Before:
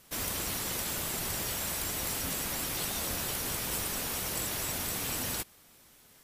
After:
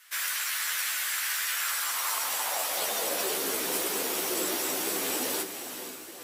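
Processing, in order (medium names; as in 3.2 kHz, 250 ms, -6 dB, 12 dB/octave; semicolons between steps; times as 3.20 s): echo that smears into a reverb 489 ms, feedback 47%, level -8.5 dB; chorus voices 6, 1.3 Hz, delay 13 ms, depth 3 ms; high-pass sweep 1.6 kHz -> 350 Hz, 1.53–3.51 s; trim +6 dB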